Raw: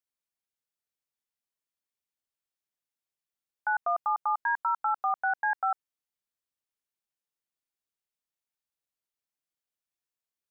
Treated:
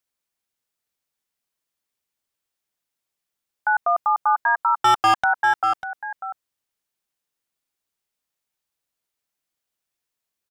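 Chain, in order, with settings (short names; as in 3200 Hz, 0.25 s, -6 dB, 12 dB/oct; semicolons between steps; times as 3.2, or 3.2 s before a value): 4.78–5.24 sample leveller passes 3; echo 0.595 s -11.5 dB; gain +8 dB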